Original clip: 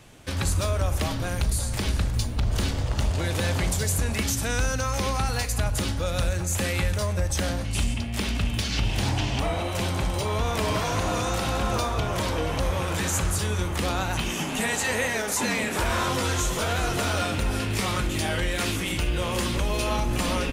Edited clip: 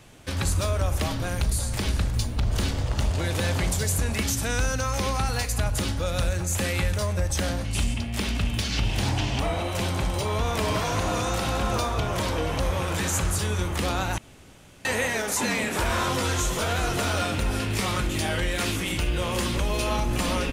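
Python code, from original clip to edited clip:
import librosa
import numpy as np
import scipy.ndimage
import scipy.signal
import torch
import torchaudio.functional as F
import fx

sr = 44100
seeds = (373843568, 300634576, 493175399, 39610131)

y = fx.edit(x, sr, fx.room_tone_fill(start_s=14.18, length_s=0.67), tone=tone)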